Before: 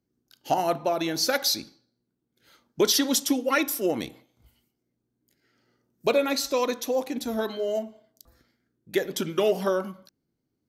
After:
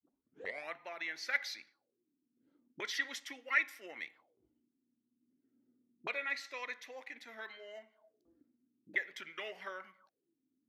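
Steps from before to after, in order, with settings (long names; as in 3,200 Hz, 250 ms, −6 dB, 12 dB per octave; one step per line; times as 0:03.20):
turntable start at the beginning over 0.73 s
envelope filter 250–2,000 Hz, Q 7.3, up, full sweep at −29.5 dBFS
level +4 dB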